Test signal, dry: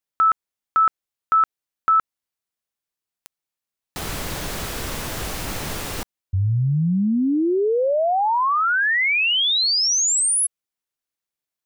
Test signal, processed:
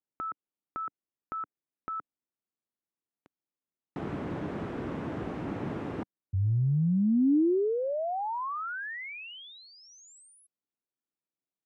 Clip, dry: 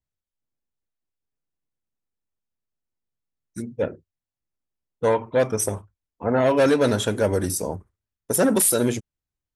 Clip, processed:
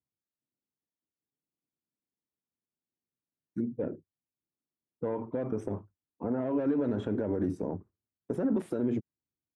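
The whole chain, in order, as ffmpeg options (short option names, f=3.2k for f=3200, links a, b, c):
-af "highpass=140,lowpass=5.8k,acompressor=threshold=-23dB:ratio=10:attack=0.96:release=87:knee=1:detection=peak,firequalizer=gain_entry='entry(190,0);entry(290,3);entry(500,-5);entry(4500,-29)':delay=0.05:min_phase=1"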